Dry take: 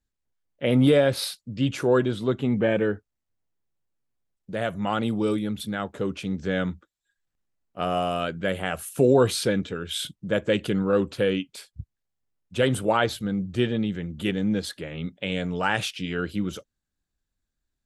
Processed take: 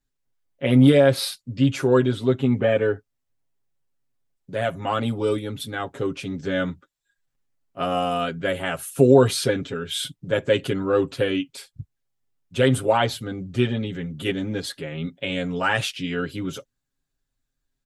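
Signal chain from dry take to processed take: comb 7.4 ms, depth 86%

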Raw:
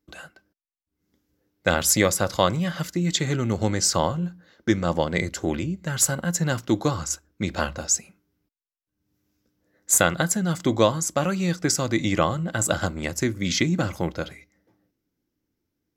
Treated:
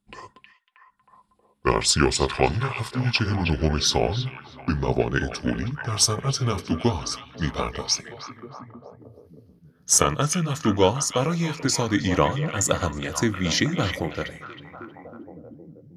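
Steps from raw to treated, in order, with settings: pitch bend over the whole clip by -7 st ending unshifted; repeats whose band climbs or falls 316 ms, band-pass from 2.5 kHz, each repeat -0.7 oct, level -4.5 dB; trim +1.5 dB

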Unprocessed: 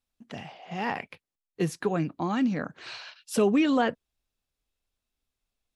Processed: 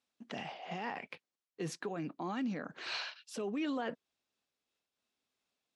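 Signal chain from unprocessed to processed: low-pass 7.2 kHz 12 dB/octave; reverse; compression 12:1, threshold -30 dBFS, peak gain reduction 12.5 dB; reverse; peak limiter -29.5 dBFS, peak gain reduction 10.5 dB; high-pass 210 Hz 12 dB/octave; random flutter of the level, depth 55%; trim +4 dB

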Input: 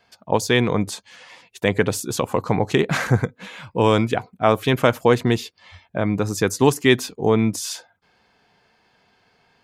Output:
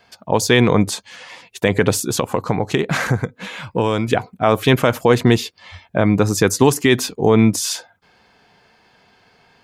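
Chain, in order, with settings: 1.93–4.08 s: compression 3:1, threshold -23 dBFS, peak gain reduction 9.5 dB; loudness maximiser +7.5 dB; trim -1 dB

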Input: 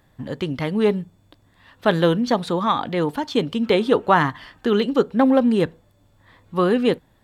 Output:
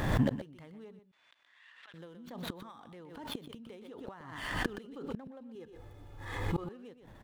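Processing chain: median filter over 9 samples; compression 5:1, threshold -20 dBFS, peak gain reduction 9.5 dB; inverted gate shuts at -23 dBFS, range -32 dB; 0.99–1.94 s: ladder band-pass 2.8 kHz, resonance 20%; 5.55–6.64 s: comb 2.4 ms, depth 67%; on a send: delay 123 ms -11.5 dB; on the sum: swell ahead of each attack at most 49 dB/s; trim +5 dB

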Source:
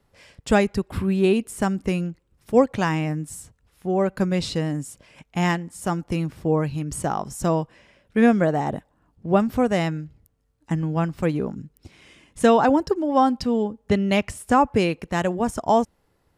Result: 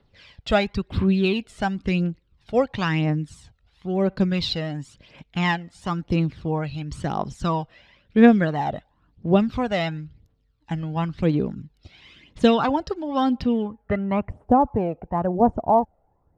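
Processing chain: low-pass sweep 3.9 kHz -> 770 Hz, 13.31–14.35 s; phaser 0.97 Hz, delay 1.6 ms, feedback 55%; trim -3 dB

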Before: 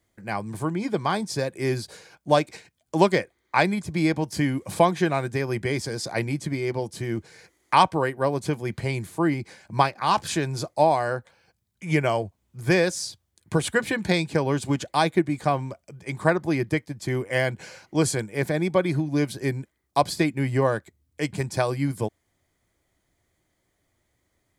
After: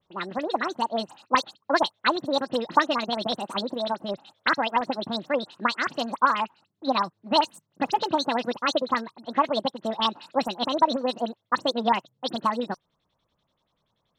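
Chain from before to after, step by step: LFO low-pass square 6 Hz 570–2400 Hz; phase dispersion highs, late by 91 ms, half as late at 2.9 kHz; speed mistake 45 rpm record played at 78 rpm; trim -3.5 dB

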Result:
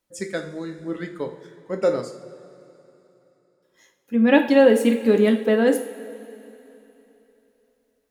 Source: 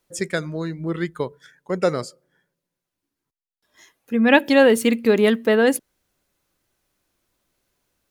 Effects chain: dynamic bell 380 Hz, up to +7 dB, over -27 dBFS, Q 0.74; two-slope reverb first 0.46 s, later 3.3 s, from -16 dB, DRR 4 dB; trim -7.5 dB

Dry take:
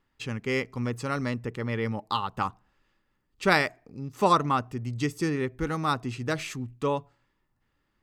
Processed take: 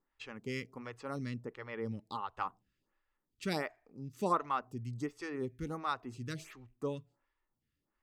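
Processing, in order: 1.18–2.33 s: treble shelf 12 kHz -10.5 dB; lamp-driven phase shifter 1.4 Hz; trim -7.5 dB

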